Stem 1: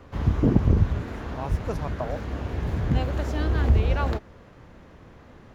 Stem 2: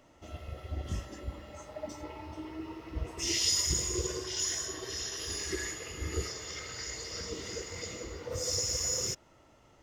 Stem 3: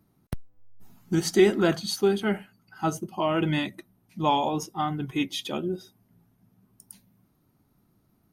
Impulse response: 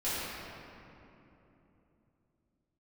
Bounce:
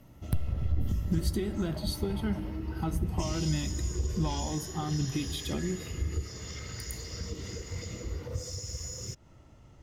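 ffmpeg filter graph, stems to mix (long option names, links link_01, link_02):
-filter_complex "[0:a]acompressor=threshold=-24dB:ratio=6,adelay=350,volume=-20dB[link_01];[1:a]acompressor=threshold=-38dB:ratio=6,volume=-2dB[link_02];[2:a]aexciter=amount=1.2:drive=6.5:freq=3500,acompressor=threshold=-32dB:ratio=6,volume=-4dB,asplit=2[link_03][link_04];[link_04]volume=-23.5dB[link_05];[3:a]atrim=start_sample=2205[link_06];[link_05][link_06]afir=irnorm=-1:irlink=0[link_07];[link_01][link_02][link_03][link_07]amix=inputs=4:normalize=0,bass=frequency=250:gain=14,treble=frequency=4000:gain=1"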